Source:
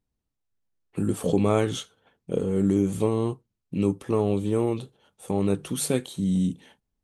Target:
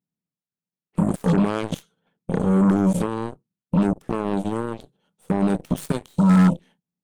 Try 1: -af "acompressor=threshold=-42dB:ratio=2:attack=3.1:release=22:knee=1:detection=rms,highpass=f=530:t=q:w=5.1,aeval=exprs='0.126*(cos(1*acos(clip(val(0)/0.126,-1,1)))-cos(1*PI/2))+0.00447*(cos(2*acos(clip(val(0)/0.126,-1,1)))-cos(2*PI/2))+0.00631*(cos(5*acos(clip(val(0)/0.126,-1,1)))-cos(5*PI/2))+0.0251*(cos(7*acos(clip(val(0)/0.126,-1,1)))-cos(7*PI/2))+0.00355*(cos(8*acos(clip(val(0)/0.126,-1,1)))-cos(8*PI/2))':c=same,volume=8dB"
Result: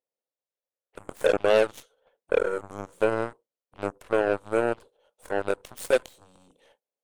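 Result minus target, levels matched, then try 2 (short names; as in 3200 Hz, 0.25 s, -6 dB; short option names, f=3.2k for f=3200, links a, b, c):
125 Hz band -17.0 dB
-af "acompressor=threshold=-42dB:ratio=2:attack=3.1:release=22:knee=1:detection=rms,highpass=f=170:t=q:w=5.1,aeval=exprs='0.126*(cos(1*acos(clip(val(0)/0.126,-1,1)))-cos(1*PI/2))+0.00447*(cos(2*acos(clip(val(0)/0.126,-1,1)))-cos(2*PI/2))+0.00631*(cos(5*acos(clip(val(0)/0.126,-1,1)))-cos(5*PI/2))+0.0251*(cos(7*acos(clip(val(0)/0.126,-1,1)))-cos(7*PI/2))+0.00355*(cos(8*acos(clip(val(0)/0.126,-1,1)))-cos(8*PI/2))':c=same,volume=8dB"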